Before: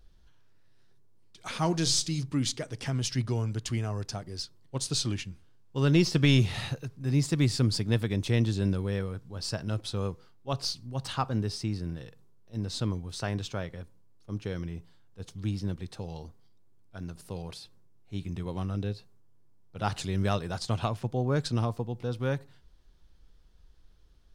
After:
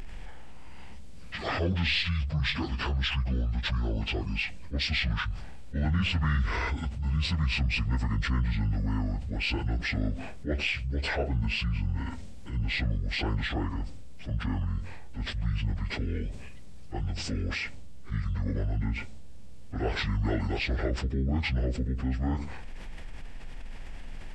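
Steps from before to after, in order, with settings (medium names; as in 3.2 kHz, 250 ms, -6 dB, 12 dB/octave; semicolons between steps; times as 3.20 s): frequency-domain pitch shifter -11 st; level flattener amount 70%; trim -5 dB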